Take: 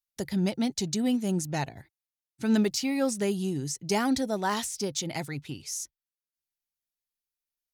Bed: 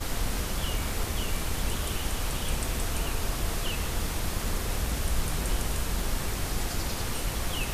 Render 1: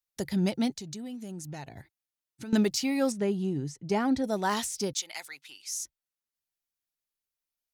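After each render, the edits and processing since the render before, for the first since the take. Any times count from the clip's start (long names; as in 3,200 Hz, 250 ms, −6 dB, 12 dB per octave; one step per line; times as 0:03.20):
0:00.75–0:02.53: downward compressor, threshold −37 dBFS
0:03.12–0:04.24: low-pass filter 1,500 Hz 6 dB per octave
0:04.93–0:05.77: Bessel high-pass filter 1,500 Hz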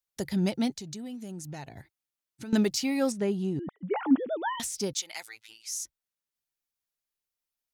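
0:03.59–0:04.60: three sine waves on the formant tracks
0:05.23–0:05.64: phases set to zero 111 Hz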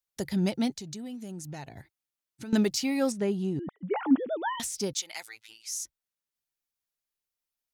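no processing that can be heard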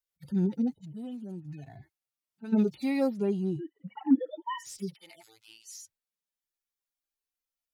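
harmonic-percussive split with one part muted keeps harmonic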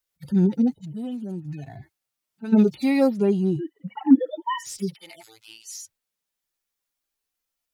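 level +8 dB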